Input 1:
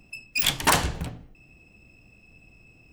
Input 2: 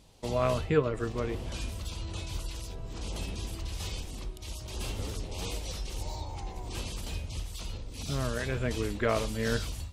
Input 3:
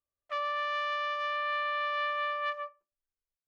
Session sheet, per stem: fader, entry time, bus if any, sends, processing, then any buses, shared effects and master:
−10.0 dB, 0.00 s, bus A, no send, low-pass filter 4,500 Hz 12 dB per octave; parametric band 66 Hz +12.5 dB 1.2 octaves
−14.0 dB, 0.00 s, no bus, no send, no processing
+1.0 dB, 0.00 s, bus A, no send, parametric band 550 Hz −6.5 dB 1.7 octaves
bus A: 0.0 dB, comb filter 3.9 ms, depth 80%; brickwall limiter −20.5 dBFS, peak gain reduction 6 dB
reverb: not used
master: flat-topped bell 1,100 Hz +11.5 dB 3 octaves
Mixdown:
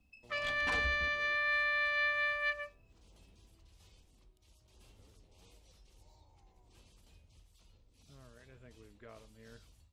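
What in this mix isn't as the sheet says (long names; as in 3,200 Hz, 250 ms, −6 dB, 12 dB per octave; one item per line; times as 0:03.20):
stem 1 −10.0 dB → −22.0 dB
stem 2 −14.0 dB → −26.0 dB
master: missing flat-topped bell 1,100 Hz +11.5 dB 3 octaves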